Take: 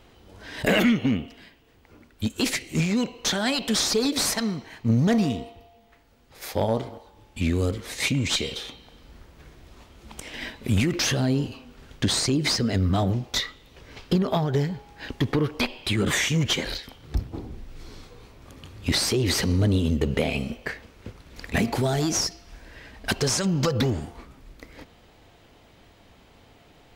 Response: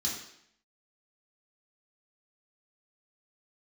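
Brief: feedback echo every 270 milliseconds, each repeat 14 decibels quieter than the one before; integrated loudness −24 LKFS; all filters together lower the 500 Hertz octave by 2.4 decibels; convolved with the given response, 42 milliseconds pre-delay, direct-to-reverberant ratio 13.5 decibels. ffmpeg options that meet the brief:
-filter_complex "[0:a]equalizer=frequency=500:width_type=o:gain=-3,aecho=1:1:270|540:0.2|0.0399,asplit=2[link_01][link_02];[1:a]atrim=start_sample=2205,adelay=42[link_03];[link_02][link_03]afir=irnorm=-1:irlink=0,volume=-17.5dB[link_04];[link_01][link_04]amix=inputs=2:normalize=0,volume=1dB"

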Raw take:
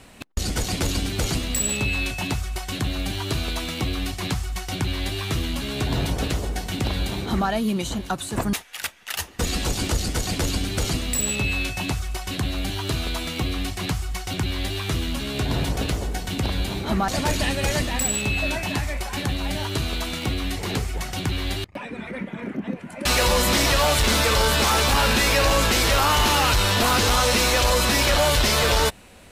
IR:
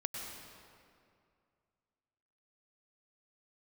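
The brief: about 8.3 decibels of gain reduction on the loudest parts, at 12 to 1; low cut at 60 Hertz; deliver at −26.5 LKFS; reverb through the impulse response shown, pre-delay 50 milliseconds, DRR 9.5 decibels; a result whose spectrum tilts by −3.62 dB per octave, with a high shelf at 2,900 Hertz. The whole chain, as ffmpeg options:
-filter_complex "[0:a]highpass=60,highshelf=frequency=2900:gain=4.5,acompressor=threshold=-23dB:ratio=12,asplit=2[link_01][link_02];[1:a]atrim=start_sample=2205,adelay=50[link_03];[link_02][link_03]afir=irnorm=-1:irlink=0,volume=-11dB[link_04];[link_01][link_04]amix=inputs=2:normalize=0"

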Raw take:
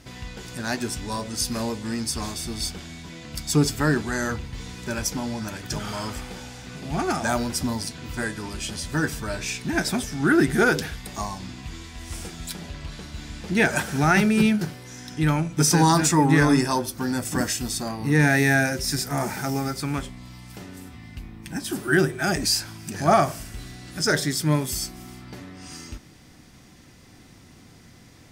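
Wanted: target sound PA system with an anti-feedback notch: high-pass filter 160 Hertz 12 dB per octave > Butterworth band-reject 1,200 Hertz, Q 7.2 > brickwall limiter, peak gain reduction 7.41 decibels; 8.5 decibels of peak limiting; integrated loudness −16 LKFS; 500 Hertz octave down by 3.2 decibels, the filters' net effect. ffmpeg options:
ffmpeg -i in.wav -af "equalizer=frequency=500:width_type=o:gain=-4.5,alimiter=limit=-16dB:level=0:latency=1,highpass=160,asuperstop=centerf=1200:order=8:qfactor=7.2,volume=16dB,alimiter=limit=-5.5dB:level=0:latency=1" out.wav

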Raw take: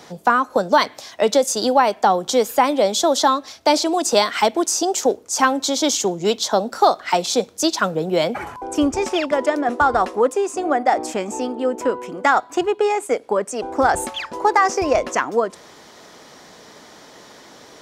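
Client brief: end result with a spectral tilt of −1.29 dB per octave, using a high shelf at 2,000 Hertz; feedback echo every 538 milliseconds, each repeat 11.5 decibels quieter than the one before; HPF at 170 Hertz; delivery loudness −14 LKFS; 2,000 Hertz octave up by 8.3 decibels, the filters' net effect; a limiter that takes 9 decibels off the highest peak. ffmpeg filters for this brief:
ffmpeg -i in.wav -af "highpass=170,highshelf=frequency=2000:gain=4,equalizer=frequency=2000:width_type=o:gain=8.5,alimiter=limit=-6dB:level=0:latency=1,aecho=1:1:538|1076|1614:0.266|0.0718|0.0194,volume=4dB" out.wav

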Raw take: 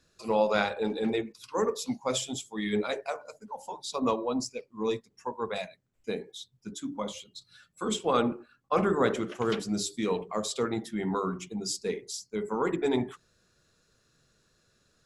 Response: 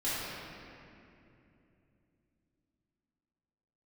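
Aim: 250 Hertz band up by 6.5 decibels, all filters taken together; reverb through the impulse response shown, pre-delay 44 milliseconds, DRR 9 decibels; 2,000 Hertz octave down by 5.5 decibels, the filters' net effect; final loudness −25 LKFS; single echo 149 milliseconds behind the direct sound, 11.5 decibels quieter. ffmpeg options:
-filter_complex "[0:a]equalizer=frequency=250:width_type=o:gain=8,equalizer=frequency=2000:width_type=o:gain=-8,aecho=1:1:149:0.266,asplit=2[link_01][link_02];[1:a]atrim=start_sample=2205,adelay=44[link_03];[link_02][link_03]afir=irnorm=-1:irlink=0,volume=-17dB[link_04];[link_01][link_04]amix=inputs=2:normalize=0,volume=2.5dB"

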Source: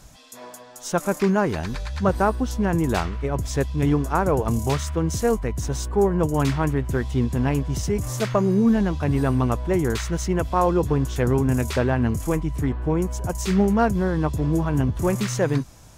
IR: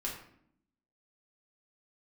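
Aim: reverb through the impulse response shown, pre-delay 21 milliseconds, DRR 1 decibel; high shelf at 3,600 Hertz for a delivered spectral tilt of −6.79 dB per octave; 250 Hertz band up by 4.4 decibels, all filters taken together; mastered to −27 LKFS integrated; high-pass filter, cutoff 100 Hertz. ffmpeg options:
-filter_complex "[0:a]highpass=100,equalizer=frequency=250:width_type=o:gain=6,highshelf=frequency=3600:gain=-3,asplit=2[link_01][link_02];[1:a]atrim=start_sample=2205,adelay=21[link_03];[link_02][link_03]afir=irnorm=-1:irlink=0,volume=-3dB[link_04];[link_01][link_04]amix=inputs=2:normalize=0,volume=-9.5dB"

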